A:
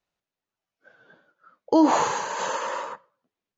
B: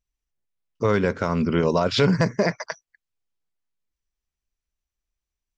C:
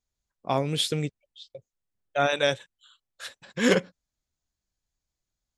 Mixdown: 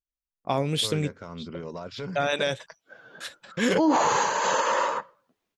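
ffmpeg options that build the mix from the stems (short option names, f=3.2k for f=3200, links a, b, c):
-filter_complex "[0:a]dynaudnorm=f=490:g=3:m=10dB,adelay=2050,volume=-2dB[a];[1:a]asoftclip=type=tanh:threshold=-9.5dB,volume=-15.5dB[b];[2:a]agate=range=-28dB:threshold=-51dB:ratio=16:detection=peak,volume=1.5dB[c];[a][b][c]amix=inputs=3:normalize=0,alimiter=limit=-13.5dB:level=0:latency=1:release=47"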